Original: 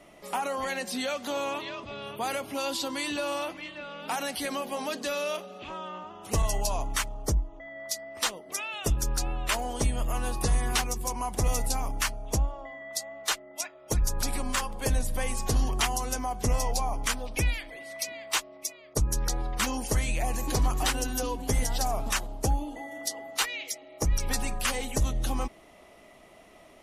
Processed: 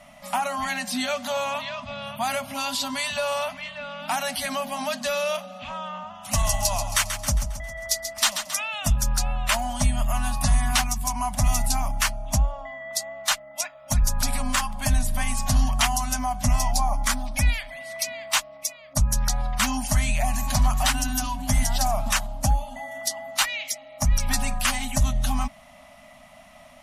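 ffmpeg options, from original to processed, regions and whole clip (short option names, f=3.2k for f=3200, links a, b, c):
-filter_complex "[0:a]asettb=1/sr,asplit=3[a][b][c];[a]atrim=end=6.144[d];[b]atrim=start=6.14:end=8.55,asetpts=PTS-STARTPTS,afade=t=in:d=0.004:c=qsin,afade=t=out:st=2.406:d=0.004:c=qsin,tiltshelf=f=1.3k:g=-3,aecho=1:1:135|270|405|540|675|810:0.355|0.181|0.0923|0.0471|0.024|0.0122,atrim=end_sample=106281[e];[c]atrim=start=8.546[f];[d][e]acrossfade=d=0.004:c1=hsin:c2=qsin[g];[g][f]acrossfade=d=0.004:c1=qsin:c2=hsin,asettb=1/sr,asplit=3[h][i][j];[h]atrim=end=16.754[k];[i]atrim=start=16.75:end=17.49,asetpts=PTS-STARTPTS,afade=t=in:d=0.004:c=qsin,afade=t=out:st=0.736:d=0.004:c=qsin,equalizer=f=2.8k:w=2.9:g=-7,aecho=1:1:3.6:0.33,atrim=end_sample=32634[l];[j]atrim=start=17.486[m];[k][l]acrossfade=d=0.004:c1=hsin:c2=qsin[n];[n][m]acrossfade=d=0.004:c1=qsin:c2=hsin,afftfilt=real='re*(1-between(b*sr/4096,270,550))':imag='im*(1-between(b*sr/4096,270,550))':win_size=4096:overlap=0.75,acontrast=62,volume=-1dB"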